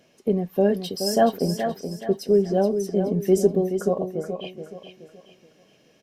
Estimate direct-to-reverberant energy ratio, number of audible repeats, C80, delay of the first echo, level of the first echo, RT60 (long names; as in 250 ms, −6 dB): no reverb audible, 3, no reverb audible, 425 ms, −8.0 dB, no reverb audible